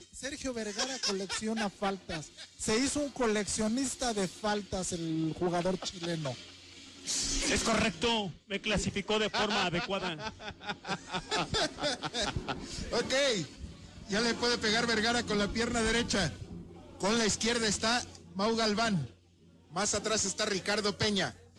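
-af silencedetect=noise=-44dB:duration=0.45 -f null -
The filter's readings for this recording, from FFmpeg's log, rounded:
silence_start: 19.10
silence_end: 19.73 | silence_duration: 0.63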